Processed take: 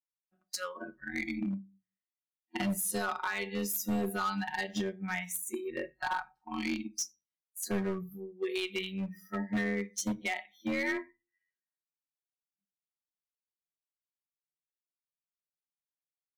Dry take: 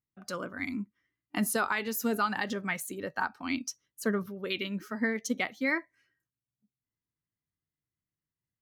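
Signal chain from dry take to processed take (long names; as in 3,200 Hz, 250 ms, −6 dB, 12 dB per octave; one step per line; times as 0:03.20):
noise reduction from a noise print of the clip's start 27 dB
dynamic equaliser 1,500 Hz, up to −4 dB, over −43 dBFS, Q 0.79
time stretch by overlap-add 1.9×, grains 23 ms
in parallel at +1.5 dB: brickwall limiter −27 dBFS, peak gain reduction 8 dB
on the sum: transient designer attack +4 dB, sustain −2 dB
hard clipping −22.5 dBFS, distortion −13 dB
on a send at −15 dB: convolution reverb RT60 0.25 s, pre-delay 3 ms
on the sum: level −4.5 dB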